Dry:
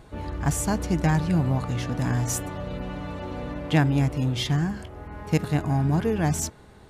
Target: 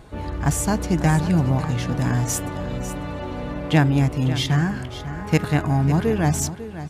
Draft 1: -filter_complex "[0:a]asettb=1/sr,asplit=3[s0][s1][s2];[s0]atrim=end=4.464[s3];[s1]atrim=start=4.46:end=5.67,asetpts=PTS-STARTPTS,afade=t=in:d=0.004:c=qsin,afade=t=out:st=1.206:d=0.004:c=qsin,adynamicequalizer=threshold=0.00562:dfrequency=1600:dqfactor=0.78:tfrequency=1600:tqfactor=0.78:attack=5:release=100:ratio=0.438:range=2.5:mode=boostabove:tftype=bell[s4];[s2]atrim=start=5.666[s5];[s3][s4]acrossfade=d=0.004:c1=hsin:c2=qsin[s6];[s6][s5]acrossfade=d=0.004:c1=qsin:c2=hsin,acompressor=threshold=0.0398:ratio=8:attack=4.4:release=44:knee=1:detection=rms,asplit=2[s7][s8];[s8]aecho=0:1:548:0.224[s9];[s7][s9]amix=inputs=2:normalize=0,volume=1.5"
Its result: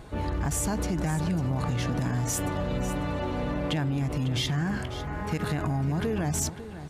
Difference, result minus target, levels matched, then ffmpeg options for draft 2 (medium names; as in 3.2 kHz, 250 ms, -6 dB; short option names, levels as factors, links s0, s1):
compression: peak gain reduction +14 dB
-filter_complex "[0:a]asettb=1/sr,asplit=3[s0][s1][s2];[s0]atrim=end=4.464[s3];[s1]atrim=start=4.46:end=5.67,asetpts=PTS-STARTPTS,afade=t=in:d=0.004:c=qsin,afade=t=out:st=1.206:d=0.004:c=qsin,adynamicequalizer=threshold=0.00562:dfrequency=1600:dqfactor=0.78:tfrequency=1600:tqfactor=0.78:attack=5:release=100:ratio=0.438:range=2.5:mode=boostabove:tftype=bell[s4];[s2]atrim=start=5.666[s5];[s3][s4]acrossfade=d=0.004:c1=hsin:c2=qsin[s6];[s6][s5]acrossfade=d=0.004:c1=qsin:c2=hsin,asplit=2[s7][s8];[s8]aecho=0:1:548:0.224[s9];[s7][s9]amix=inputs=2:normalize=0,volume=1.5"